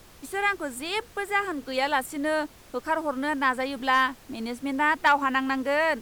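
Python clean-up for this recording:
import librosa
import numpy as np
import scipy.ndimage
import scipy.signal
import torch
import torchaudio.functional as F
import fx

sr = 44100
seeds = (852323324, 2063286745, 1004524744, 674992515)

y = fx.fix_declip(x, sr, threshold_db=-11.5)
y = fx.noise_reduce(y, sr, print_start_s=2.4, print_end_s=2.9, reduce_db=21.0)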